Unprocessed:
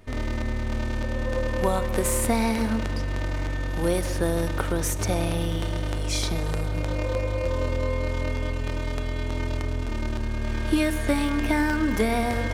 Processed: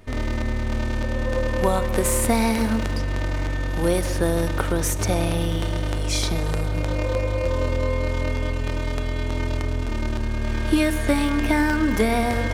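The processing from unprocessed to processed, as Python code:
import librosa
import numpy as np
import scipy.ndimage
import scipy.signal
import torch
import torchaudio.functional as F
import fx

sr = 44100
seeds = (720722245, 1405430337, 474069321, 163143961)

y = fx.high_shelf(x, sr, hz=8700.0, db=5.0, at=(2.29, 2.99))
y = F.gain(torch.from_numpy(y), 3.0).numpy()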